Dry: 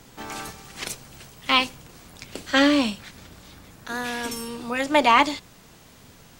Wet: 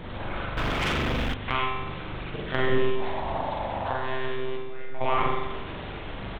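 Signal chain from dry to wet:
linear delta modulator 64 kbit/s, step −31 dBFS
high-shelf EQ 2,300 Hz −5.5 dB
ambience of single reflections 44 ms −6 dB, 54 ms −8.5 dB
one-pitch LPC vocoder at 8 kHz 130 Hz
0:02.95–0:03.93: flat-topped bell 760 Hz +14.5 dB 1.1 octaves
downward compressor 2 to 1, threshold −28 dBFS, peak gain reduction 9.5 dB
0:04.57–0:05.01: tuned comb filter 160 Hz, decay 0.68 s, harmonics all, mix 90%
spring reverb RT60 1.1 s, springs 41 ms, chirp 20 ms, DRR −0.5 dB
0:00.57–0:01.34: leveller curve on the samples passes 3

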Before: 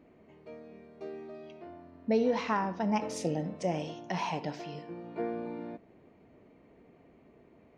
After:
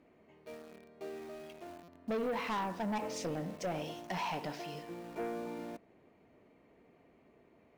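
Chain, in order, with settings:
treble cut that deepens with the level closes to 2,800 Hz, closed at −26 dBFS
low-shelf EQ 480 Hz −6 dB
in parallel at −7 dB: bit reduction 8 bits
on the sum: soft clipping −29.5 dBFS, distortion −9 dB
buffer that repeats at 0:01.83, samples 256, times 8
level −1.5 dB

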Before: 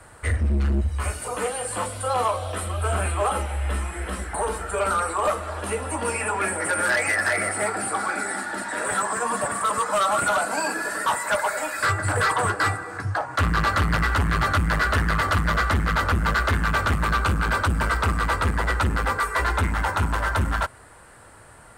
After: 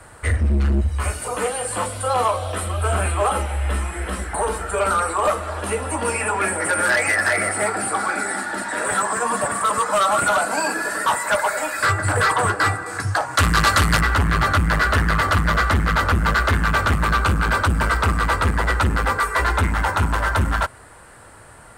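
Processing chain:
0:12.86–0:14.01: parametric band 9,600 Hz +12 dB 2.5 octaves
level +3.5 dB

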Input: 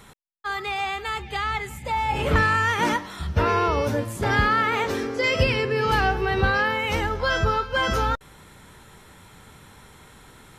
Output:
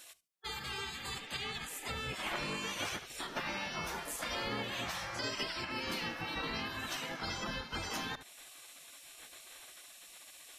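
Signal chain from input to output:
low-shelf EQ 140 Hz −4.5 dB
feedback echo with a high-pass in the loop 73 ms, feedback 18%, high-pass 410 Hz, level −15.5 dB
gate on every frequency bin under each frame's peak −15 dB weak
downward compressor 2.5 to 1, threshold −43 dBFS, peak gain reduction 11.5 dB
level +3.5 dB

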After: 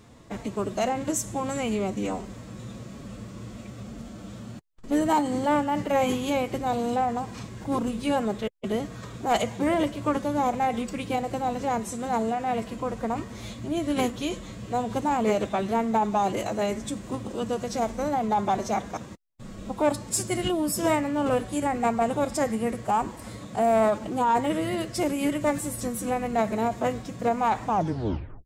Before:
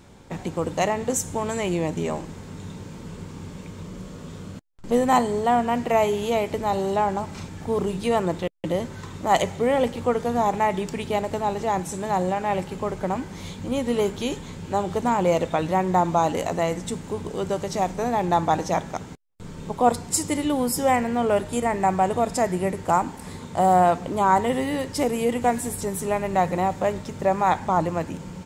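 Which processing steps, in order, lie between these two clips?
turntable brake at the end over 0.75 s
soft clipping −11 dBFS, distortion −21 dB
phase-vocoder pitch shift with formants kept +3.5 semitones
level −2 dB

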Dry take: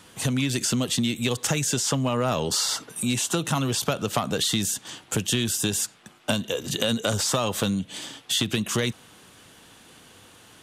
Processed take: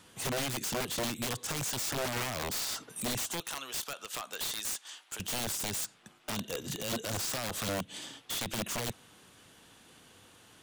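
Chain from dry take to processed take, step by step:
0:03.40–0:05.20: Bessel high-pass filter 1,100 Hz, order 2
brickwall limiter −18 dBFS, peak gain reduction 9.5 dB
wrap-around overflow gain 21 dB
level −7 dB

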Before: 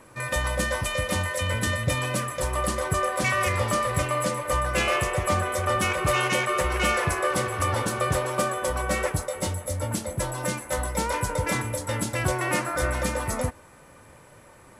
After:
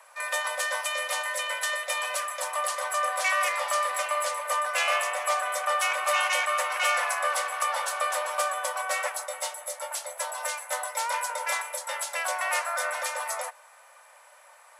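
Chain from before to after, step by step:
Butterworth high-pass 600 Hz 48 dB per octave

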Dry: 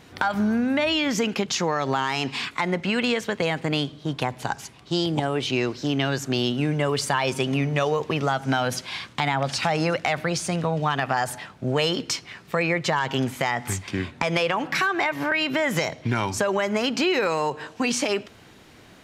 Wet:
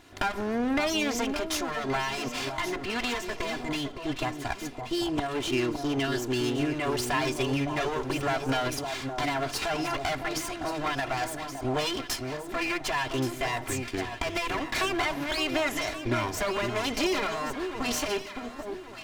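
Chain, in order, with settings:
lower of the sound and its delayed copy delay 2.9 ms
delay that swaps between a low-pass and a high-pass 563 ms, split 1,100 Hz, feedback 58%, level −6 dB
level −3 dB

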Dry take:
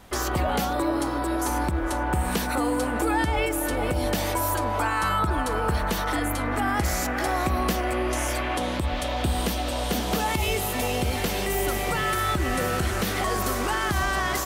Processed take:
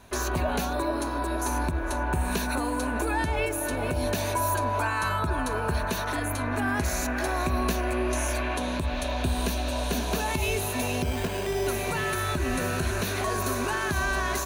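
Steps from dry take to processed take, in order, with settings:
EQ curve with evenly spaced ripples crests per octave 1.5, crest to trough 8 dB
0:11.02–0:11.67: bad sample-rate conversion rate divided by 8×, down filtered, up hold
level −3 dB

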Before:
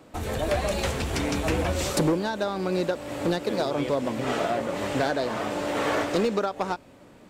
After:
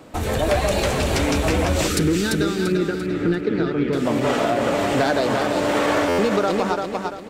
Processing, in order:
0:02.72–0:03.93: low-pass filter 1,900 Hz 12 dB per octave
repeating echo 342 ms, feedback 37%, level −6 dB
0:01.87–0:04.06: gain on a spectral selection 490–1,200 Hz −15 dB
brickwall limiter −18 dBFS, peak gain reduction 4.5 dB
buffer that repeats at 0:06.08, times 8
level +7 dB

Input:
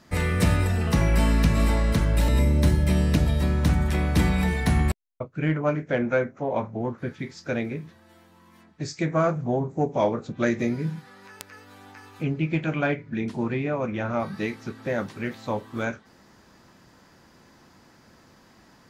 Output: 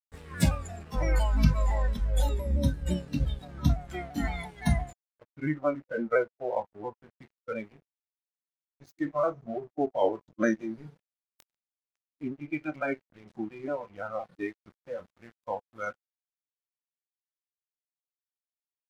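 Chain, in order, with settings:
pitch shifter swept by a sawtooth −2 semitones, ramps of 171 ms
dead-zone distortion −36 dBFS
noise reduction from a noise print of the clip's start 16 dB

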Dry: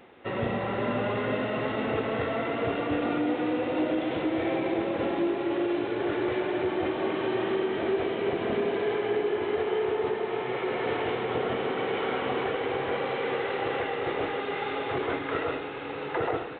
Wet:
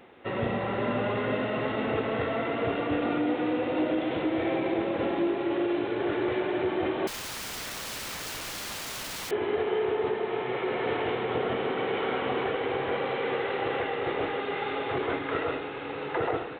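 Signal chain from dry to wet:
0:07.07–0:09.31: wrap-around overflow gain 32 dB

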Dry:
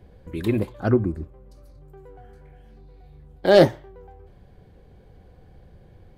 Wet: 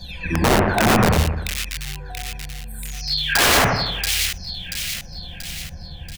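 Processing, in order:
every frequency bin delayed by itself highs early, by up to 779 ms
comb filter 1.2 ms, depth 91%
wrap-around overflow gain 19.5 dB
echo with a time of its own for lows and highs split 2,100 Hz, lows 87 ms, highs 683 ms, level −3 dB
level +8.5 dB

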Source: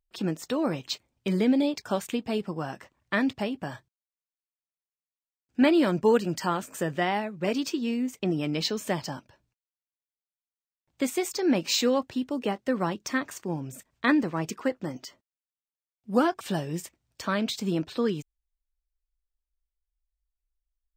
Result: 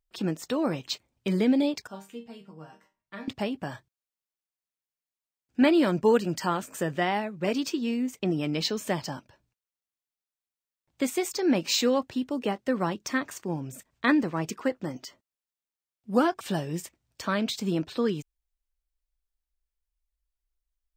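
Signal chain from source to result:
0:01.87–0:03.28: resonators tuned to a chord D#3 major, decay 0.25 s

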